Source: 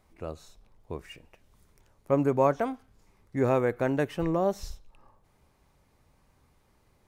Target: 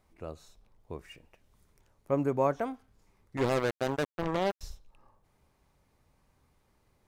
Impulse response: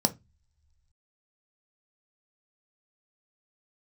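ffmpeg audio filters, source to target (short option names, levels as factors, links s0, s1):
-filter_complex "[0:a]asettb=1/sr,asplit=3[s0][s1][s2];[s0]atrim=end=3.374[s3];[s1]atrim=start=3.37:end=4.61,asetpts=PTS-STARTPTS,afade=t=in:d=0.004:c=qsin,afade=t=out:st=1.236:d=0.004:c=qsin,acrusher=bits=3:mix=0:aa=0.5[s4];[s2]atrim=start=4.606[s5];[s3][s4]acrossfade=d=0.004:c1=hsin:c2=qsin[s6];[s6][s5]acrossfade=d=0.004:c1=qsin:c2=hsin,volume=0.631"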